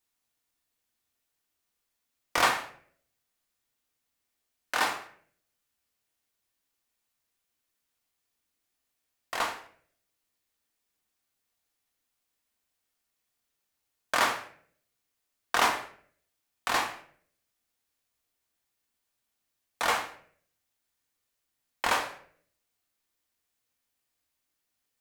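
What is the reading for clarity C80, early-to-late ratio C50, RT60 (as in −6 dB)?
13.5 dB, 10.0 dB, 0.55 s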